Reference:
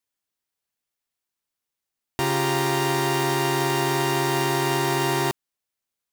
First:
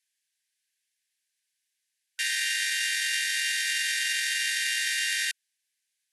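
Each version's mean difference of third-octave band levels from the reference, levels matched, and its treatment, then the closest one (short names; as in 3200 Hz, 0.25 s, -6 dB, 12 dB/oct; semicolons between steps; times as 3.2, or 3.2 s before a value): 24.5 dB: limiter -20 dBFS, peak gain reduction 8 dB; brick-wall FIR band-pass 1500–12000 Hz; gain +7.5 dB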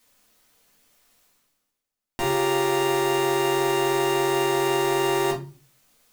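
4.0 dB: reverse; upward compressor, threshold -40 dBFS; reverse; shoebox room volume 170 m³, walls furnished, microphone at 2 m; gain -5 dB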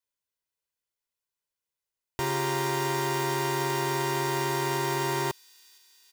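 1.5 dB: comb 2 ms, depth 48%; on a send: thin delay 0.467 s, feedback 71%, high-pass 3200 Hz, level -21 dB; on the sum: gain -6 dB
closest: third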